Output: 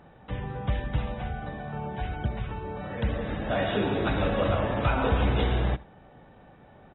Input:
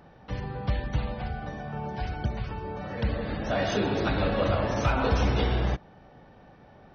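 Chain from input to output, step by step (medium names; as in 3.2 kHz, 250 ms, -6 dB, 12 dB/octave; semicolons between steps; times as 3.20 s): brick-wall FIR low-pass 3.9 kHz; delay 80 ms -21.5 dB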